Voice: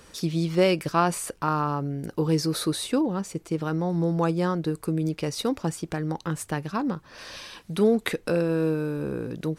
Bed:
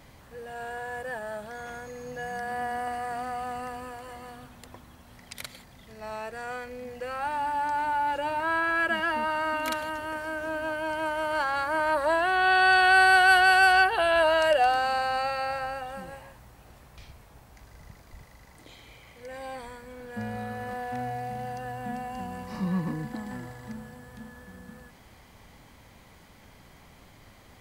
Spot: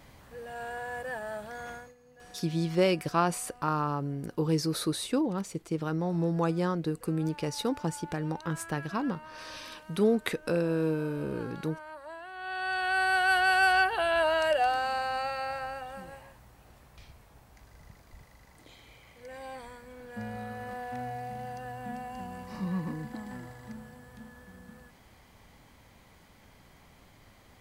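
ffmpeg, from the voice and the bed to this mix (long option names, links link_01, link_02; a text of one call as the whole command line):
ffmpeg -i stem1.wav -i stem2.wav -filter_complex "[0:a]adelay=2200,volume=-4dB[link_01];[1:a]volume=14dB,afade=type=out:start_time=1.7:duration=0.25:silence=0.125893,afade=type=in:start_time=12.33:duration=1.35:silence=0.16788[link_02];[link_01][link_02]amix=inputs=2:normalize=0" out.wav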